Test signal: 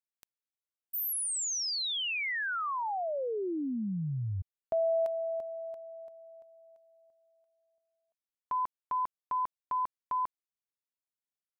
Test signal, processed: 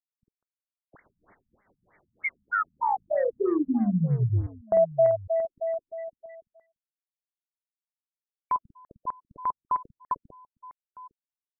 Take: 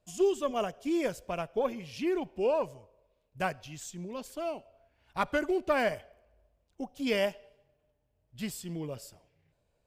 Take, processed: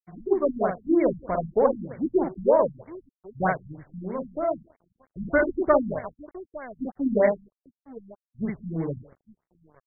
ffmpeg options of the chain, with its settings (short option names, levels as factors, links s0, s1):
-af "aecho=1:1:49|195|856:0.668|0.119|0.168,aeval=exprs='sgn(val(0))*max(abs(val(0))-0.00299,0)':c=same,afftfilt=real='re*lt(b*sr/1024,230*pow(2300/230,0.5+0.5*sin(2*PI*3.2*pts/sr)))':imag='im*lt(b*sr/1024,230*pow(2300/230,0.5+0.5*sin(2*PI*3.2*pts/sr)))':win_size=1024:overlap=0.75,volume=2.66"